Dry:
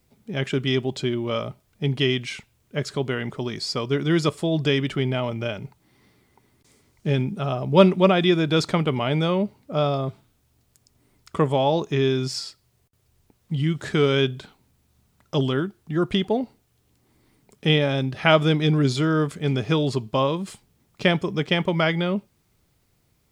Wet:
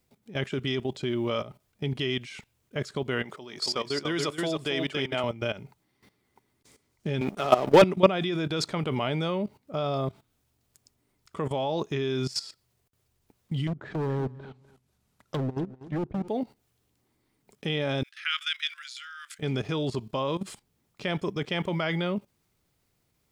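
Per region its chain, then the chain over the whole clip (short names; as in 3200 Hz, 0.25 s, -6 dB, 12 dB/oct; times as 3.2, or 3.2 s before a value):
3.24–5.24 HPF 390 Hz 6 dB/oct + echo 0.275 s -6 dB
7.21–7.82 HPF 300 Hz + sample leveller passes 3
13.67–16.28 treble ducked by the level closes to 310 Hz, closed at -19.5 dBFS + hard clip -24.5 dBFS + feedback echo 0.248 s, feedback 20%, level -15 dB
18.03–19.39 steep high-pass 1400 Hz 48 dB/oct + dynamic EQ 2900 Hz, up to +4 dB, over -39 dBFS, Q 3.6
whole clip: low shelf 180 Hz -4.5 dB; level quantiser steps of 15 dB; gain +2 dB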